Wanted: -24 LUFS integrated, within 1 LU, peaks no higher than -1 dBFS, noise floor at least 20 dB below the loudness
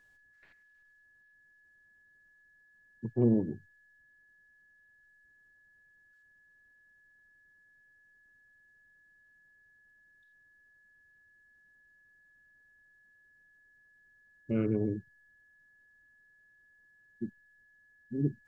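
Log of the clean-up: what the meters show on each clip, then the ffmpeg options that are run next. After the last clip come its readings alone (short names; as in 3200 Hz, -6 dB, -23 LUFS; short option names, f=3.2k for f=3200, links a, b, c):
steady tone 1700 Hz; tone level -62 dBFS; loudness -33.0 LUFS; peak -15.0 dBFS; loudness target -24.0 LUFS
-> -af "bandreject=f=1.7k:w=30"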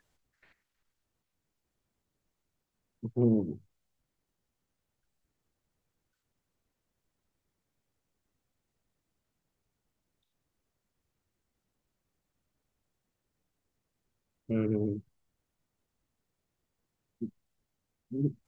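steady tone none; loudness -32.5 LUFS; peak -15.0 dBFS; loudness target -24.0 LUFS
-> -af "volume=8.5dB"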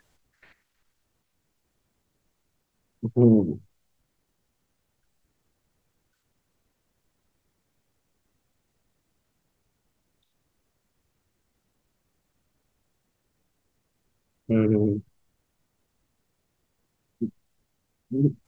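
loudness -24.0 LUFS; peak -6.5 dBFS; noise floor -76 dBFS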